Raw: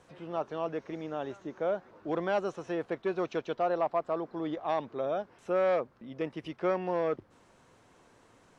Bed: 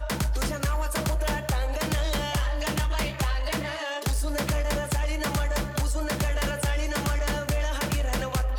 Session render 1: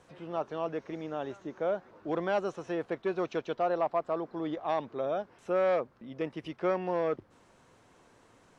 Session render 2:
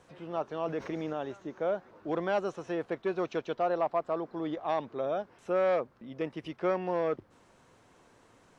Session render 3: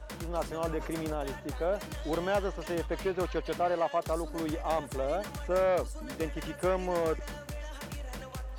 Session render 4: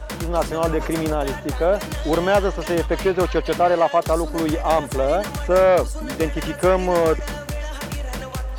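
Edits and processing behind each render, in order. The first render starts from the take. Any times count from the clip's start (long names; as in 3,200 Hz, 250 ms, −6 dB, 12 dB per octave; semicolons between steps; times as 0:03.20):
no processing that can be heard
0:00.65–0:01.13: envelope flattener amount 50%
mix in bed −13.5 dB
level +12 dB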